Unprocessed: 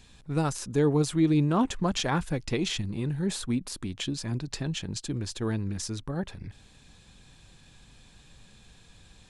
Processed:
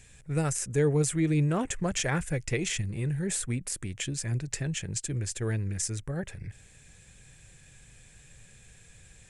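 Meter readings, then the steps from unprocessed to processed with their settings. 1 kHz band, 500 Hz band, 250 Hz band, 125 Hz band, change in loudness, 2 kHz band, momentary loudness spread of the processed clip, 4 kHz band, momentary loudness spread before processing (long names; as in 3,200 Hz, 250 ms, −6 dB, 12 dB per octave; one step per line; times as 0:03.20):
−5.5 dB, −1.0 dB, −4.0 dB, +1.0 dB, −1.0 dB, +2.0 dB, 8 LU, −4.0 dB, 10 LU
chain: graphic EQ with 10 bands 125 Hz +5 dB, 250 Hz −8 dB, 500 Hz +4 dB, 1,000 Hz −9 dB, 2,000 Hz +9 dB, 4,000 Hz −10 dB, 8,000 Hz +11 dB
level −1 dB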